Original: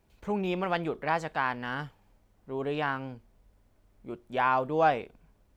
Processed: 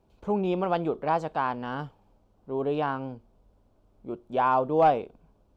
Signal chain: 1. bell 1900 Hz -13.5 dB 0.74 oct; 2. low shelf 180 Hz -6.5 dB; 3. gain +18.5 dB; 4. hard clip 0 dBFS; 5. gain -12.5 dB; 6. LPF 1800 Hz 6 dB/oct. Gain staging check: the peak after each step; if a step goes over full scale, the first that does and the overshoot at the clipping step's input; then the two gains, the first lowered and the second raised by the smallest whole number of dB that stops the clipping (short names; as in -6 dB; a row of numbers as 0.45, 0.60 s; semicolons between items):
-14.5, -15.0, +3.5, 0.0, -12.5, -12.5 dBFS; step 3, 3.5 dB; step 3 +14.5 dB, step 5 -8.5 dB